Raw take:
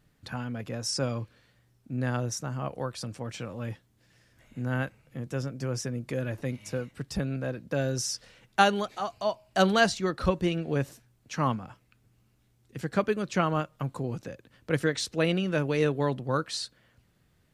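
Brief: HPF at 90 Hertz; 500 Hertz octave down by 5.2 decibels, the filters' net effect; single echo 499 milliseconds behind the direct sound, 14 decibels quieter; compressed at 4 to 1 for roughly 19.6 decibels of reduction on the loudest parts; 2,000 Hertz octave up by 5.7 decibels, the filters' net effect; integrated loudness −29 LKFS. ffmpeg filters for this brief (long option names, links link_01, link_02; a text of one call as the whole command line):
ffmpeg -i in.wav -af "highpass=90,equalizer=frequency=500:width_type=o:gain=-7,equalizer=frequency=2000:width_type=o:gain=8.5,acompressor=threshold=-39dB:ratio=4,aecho=1:1:499:0.2,volume=13dB" out.wav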